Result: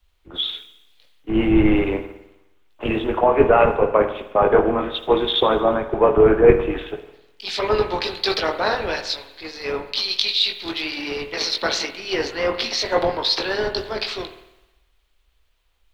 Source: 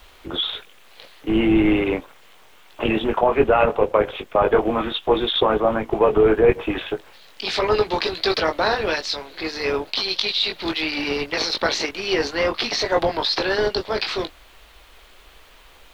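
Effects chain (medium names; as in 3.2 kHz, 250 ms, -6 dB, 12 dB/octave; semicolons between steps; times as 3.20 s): spring tank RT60 1.4 s, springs 51 ms, chirp 40 ms, DRR 8 dB; three bands expanded up and down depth 70%; trim -1 dB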